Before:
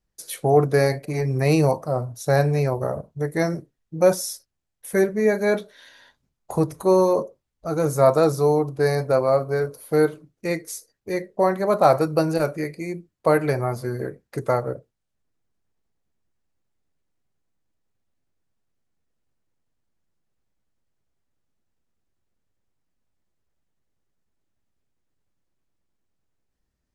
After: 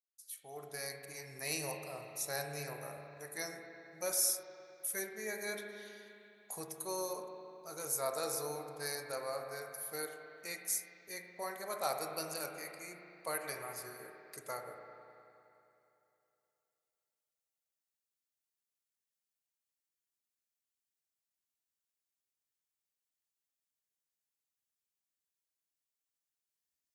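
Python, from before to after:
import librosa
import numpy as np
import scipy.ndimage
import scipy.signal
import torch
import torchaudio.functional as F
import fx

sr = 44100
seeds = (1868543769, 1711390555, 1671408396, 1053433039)

y = fx.fade_in_head(x, sr, length_s=1.45)
y = scipy.signal.sosfilt(scipy.signal.butter(2, 58.0, 'highpass', fs=sr, output='sos'), y)
y = librosa.effects.preemphasis(y, coef=0.97, zi=[0.0])
y = fx.rev_spring(y, sr, rt60_s=2.9, pass_ms=(34, 51), chirp_ms=80, drr_db=3.5)
y = y * 10.0 ** (-2.0 / 20.0)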